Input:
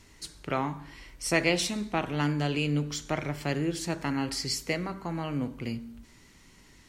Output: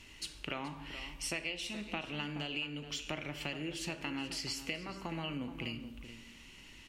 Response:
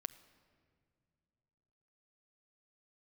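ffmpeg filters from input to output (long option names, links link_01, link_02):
-filter_complex "[0:a]equalizer=frequency=2800:width_type=o:width=0.52:gain=15,acompressor=threshold=-34dB:ratio=6,asplit=2[link_01][link_02];[link_02]adelay=425.7,volume=-11dB,highshelf=frequency=4000:gain=-9.58[link_03];[link_01][link_03]amix=inputs=2:normalize=0[link_04];[1:a]atrim=start_sample=2205,afade=type=out:start_time=0.44:duration=0.01,atrim=end_sample=19845,asetrate=83790,aresample=44100[link_05];[link_04][link_05]afir=irnorm=-1:irlink=0,volume=6.5dB"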